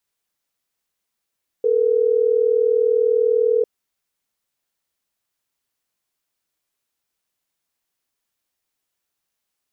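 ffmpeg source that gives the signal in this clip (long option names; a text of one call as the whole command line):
ffmpeg -f lavfi -i "aevalsrc='0.141*(sin(2*PI*440*t)+sin(2*PI*480*t))*clip(min(mod(t,6),2-mod(t,6))/0.005,0,1)':duration=3.12:sample_rate=44100" out.wav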